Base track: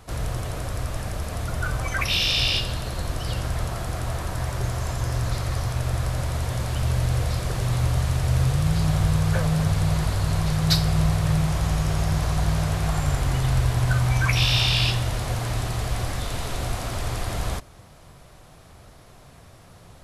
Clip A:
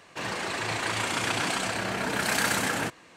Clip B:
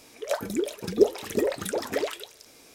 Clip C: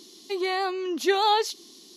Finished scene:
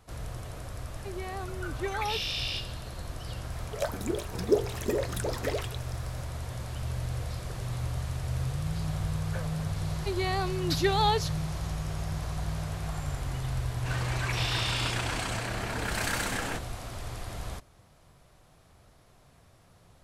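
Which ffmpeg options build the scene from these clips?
-filter_complex "[3:a]asplit=2[a][b];[0:a]volume=-10.5dB[c];[a]lowpass=2.5k[d];[2:a]bandreject=f=50:t=h:w=6,bandreject=f=100:t=h:w=6,bandreject=f=150:t=h:w=6,bandreject=f=200:t=h:w=6,bandreject=f=250:t=h:w=6,bandreject=f=300:t=h:w=6,bandreject=f=350:t=h:w=6,bandreject=f=400:t=h:w=6,bandreject=f=450:t=h:w=6,bandreject=f=500:t=h:w=6[e];[d]atrim=end=1.96,asetpts=PTS-STARTPTS,volume=-11.5dB,afade=t=in:d=0.004:c=hsin,afade=t=out:st=1.956:d=0.004:c=hsin,adelay=750[f];[e]atrim=end=2.74,asetpts=PTS-STARTPTS,volume=-3.5dB,afade=t=in:d=0.004:c=hsin,afade=t=out:st=2.736:d=0.004:c=hsin,adelay=3510[g];[b]atrim=end=1.96,asetpts=PTS-STARTPTS,volume=-4dB,afade=t=in:d=0.004:c=hsin,afade=t=out:st=1.956:d=0.004:c=hsin,adelay=9760[h];[1:a]atrim=end=3.16,asetpts=PTS-STARTPTS,volume=-5.5dB,afade=t=in:d=0.004:c=hsin,afade=t=out:st=3.156:d=0.004:c=hsin,adelay=13690[i];[c][f][g][h][i]amix=inputs=5:normalize=0"

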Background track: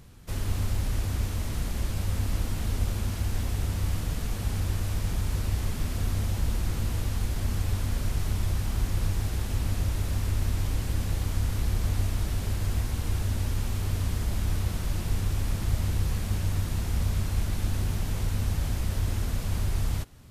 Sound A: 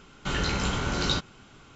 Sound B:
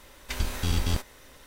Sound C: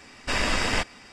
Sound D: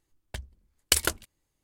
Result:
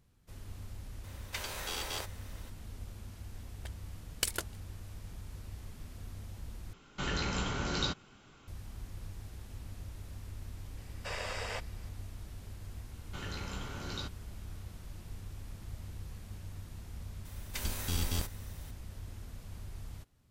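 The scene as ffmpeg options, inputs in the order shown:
-filter_complex "[2:a]asplit=2[a][b];[1:a]asplit=2[c][d];[0:a]volume=-17.5dB[e];[a]highpass=f=420:w=0.5412,highpass=f=420:w=1.3066[f];[3:a]lowshelf=f=370:t=q:w=3:g=-8.5[g];[b]highshelf=f=6.8k:g=11.5[h];[e]asplit=2[i][j];[i]atrim=end=6.734[k];[c]atrim=end=1.75,asetpts=PTS-STARTPTS,volume=-6.5dB[l];[j]atrim=start=8.476[m];[f]atrim=end=1.46,asetpts=PTS-STARTPTS,volume=-3.5dB,afade=t=in:d=0.004:c=hsin,afade=t=out:st=1.456:d=0.004:c=hsin,adelay=1040[n];[4:a]atrim=end=1.63,asetpts=PTS-STARTPTS,volume=-10dB,afade=t=in:d=0.004:c=hsin,afade=t=out:st=1.626:d=0.004:c=hsin,adelay=3310[o];[g]atrim=end=1.12,asetpts=PTS-STARTPTS,volume=-14.5dB,afade=t=in:d=0.004:c=hsin,afade=t=out:st=1.116:d=0.004:c=hsin,adelay=10770[p];[d]atrim=end=1.75,asetpts=PTS-STARTPTS,volume=-14.5dB,afade=t=in:d=0.004:c=hsin,afade=t=out:st=1.746:d=0.004:c=hsin,adelay=12880[q];[h]atrim=end=1.46,asetpts=PTS-STARTPTS,volume=-7.5dB,afade=t=in:d=0.004:c=hsin,afade=t=out:st=1.456:d=0.004:c=hsin,adelay=17250[r];[k][l]acrossfade=d=0.004:c1=hsin:c2=hsin[s];[s][m]acrossfade=d=0.004:c1=hsin:c2=hsin[t];[t][n][o][p][q][r]amix=inputs=6:normalize=0"

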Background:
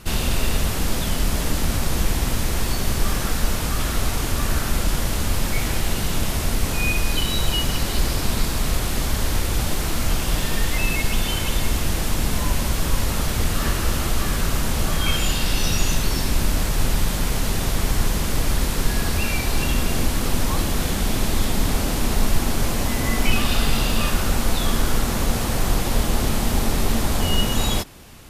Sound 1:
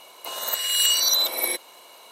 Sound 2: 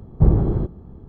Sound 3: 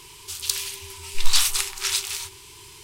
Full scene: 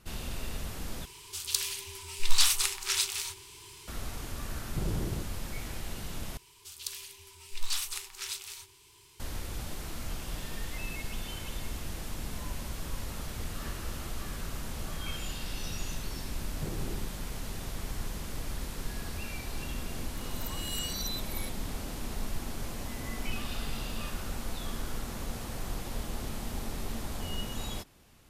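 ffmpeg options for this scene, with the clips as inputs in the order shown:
-filter_complex "[3:a]asplit=2[a][b];[2:a]asplit=2[c][d];[0:a]volume=-16dB[e];[c]asoftclip=type=tanh:threshold=-17dB[f];[b]equalizer=f=13k:w=6:g=5[g];[d]highpass=150[h];[e]asplit=3[i][j][k];[i]atrim=end=1.054[l];[a]atrim=end=2.83,asetpts=PTS-STARTPTS,volume=-4.5dB[m];[j]atrim=start=3.876:end=6.374[n];[g]atrim=end=2.83,asetpts=PTS-STARTPTS,volume=-13.5dB[o];[k]atrim=start=9.196[p];[f]atrim=end=1.08,asetpts=PTS-STARTPTS,volume=-11dB,afade=t=in:d=0.004:c=hsin,afade=t=out:st=1.076:d=0.004:c=hsin,adelay=4560[q];[h]atrim=end=1.08,asetpts=PTS-STARTPTS,volume=-17.5dB,afade=t=in:d=0.004:c=hsin,afade=t=out:st=1.076:d=0.004:c=hsin,adelay=16410[r];[1:a]atrim=end=2.11,asetpts=PTS-STARTPTS,volume=-17dB,afade=t=in:d=0.004:c=hsin,afade=t=out:st=2.106:d=0.004:c=hsin,adelay=19930[s];[l][m]acrossfade=d=0.004:c1=hsin:c2=hsin[t];[t][n]acrossfade=d=0.004:c1=hsin:c2=hsin[u];[u][o]acrossfade=d=0.004:c1=hsin:c2=hsin[v];[v][p]acrossfade=d=0.004:c1=hsin:c2=hsin[w];[w][q][r][s]amix=inputs=4:normalize=0"

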